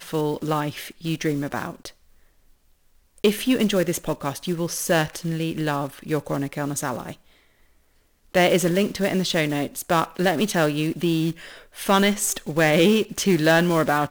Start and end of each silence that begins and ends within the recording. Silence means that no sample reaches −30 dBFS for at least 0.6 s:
0:01.88–0:03.24
0:07.13–0:08.35

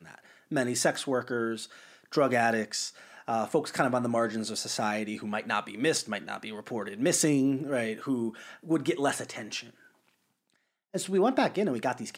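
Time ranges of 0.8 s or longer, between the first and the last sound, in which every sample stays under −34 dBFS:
0:09.61–0:10.94

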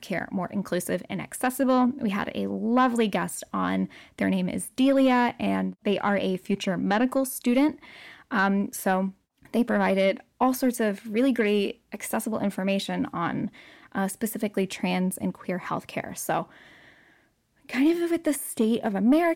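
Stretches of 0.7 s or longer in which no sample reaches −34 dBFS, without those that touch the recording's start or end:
0:16.43–0:17.69

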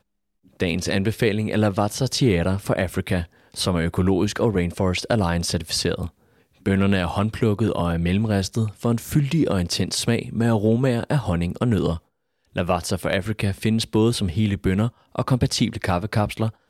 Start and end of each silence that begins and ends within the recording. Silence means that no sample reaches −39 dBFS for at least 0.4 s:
0:06.09–0:06.66
0:11.99–0:12.55

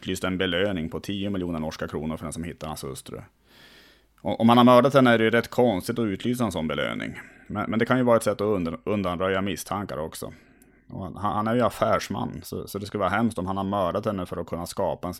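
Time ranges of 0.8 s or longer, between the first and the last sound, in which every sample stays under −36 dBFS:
0:03.23–0:04.24

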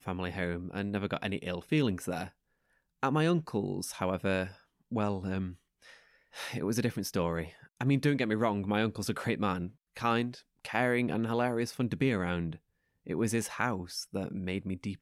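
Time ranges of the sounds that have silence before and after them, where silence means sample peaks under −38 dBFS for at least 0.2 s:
0:03.03–0:04.49
0:04.92–0:05.52
0:06.36–0:07.48
0:07.81–0:09.68
0:09.97–0:10.34
0:10.65–0:12.55

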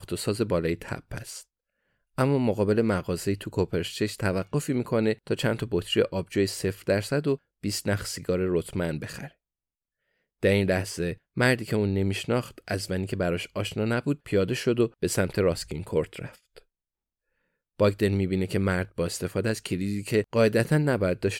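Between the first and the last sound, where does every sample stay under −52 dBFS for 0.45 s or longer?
0:01.43–0:02.17
0:09.31–0:10.43
0:16.62–0:17.79

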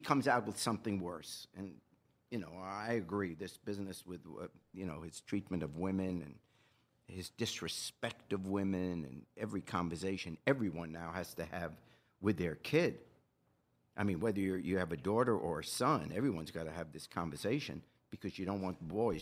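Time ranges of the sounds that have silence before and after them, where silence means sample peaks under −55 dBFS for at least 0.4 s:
0:02.32–0:06.37
0:07.09–0:13.07

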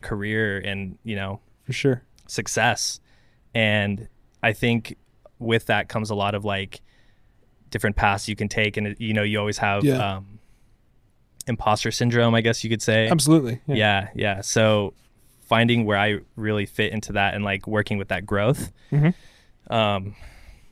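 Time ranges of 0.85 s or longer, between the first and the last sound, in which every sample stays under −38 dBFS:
0:06.77–0:07.72
0:10.36–0:11.41

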